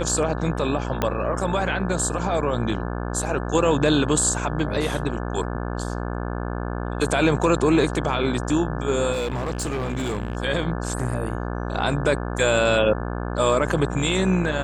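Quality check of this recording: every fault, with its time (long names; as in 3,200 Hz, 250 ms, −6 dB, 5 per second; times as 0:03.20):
mains buzz 60 Hz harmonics 29 −28 dBFS
0:01.02: click −8 dBFS
0:09.12–0:10.37: clipping −22 dBFS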